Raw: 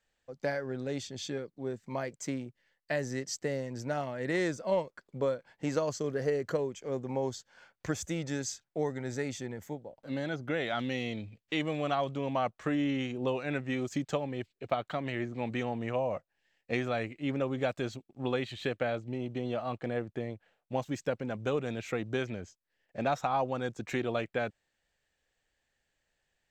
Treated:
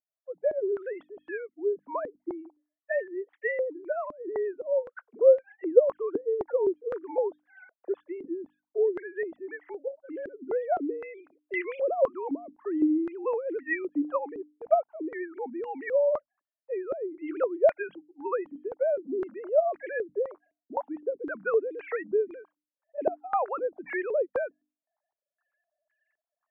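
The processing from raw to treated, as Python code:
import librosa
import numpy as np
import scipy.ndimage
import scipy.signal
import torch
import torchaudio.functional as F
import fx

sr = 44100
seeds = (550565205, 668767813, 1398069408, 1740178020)

y = fx.sine_speech(x, sr)
y = fx.hum_notches(y, sr, base_hz=50, count=6)
y = fx.filter_held_lowpass(y, sr, hz=3.9, low_hz=290.0, high_hz=1900.0)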